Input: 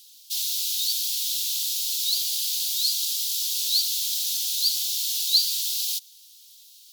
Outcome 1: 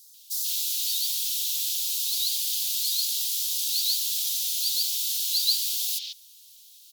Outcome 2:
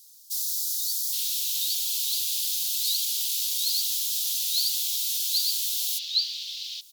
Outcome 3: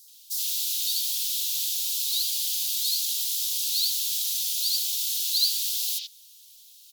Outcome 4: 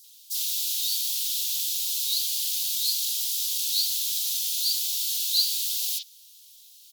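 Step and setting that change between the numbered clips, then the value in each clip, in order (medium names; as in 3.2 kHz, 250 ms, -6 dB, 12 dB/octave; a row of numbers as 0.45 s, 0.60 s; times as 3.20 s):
bands offset in time, time: 140 ms, 820 ms, 80 ms, 40 ms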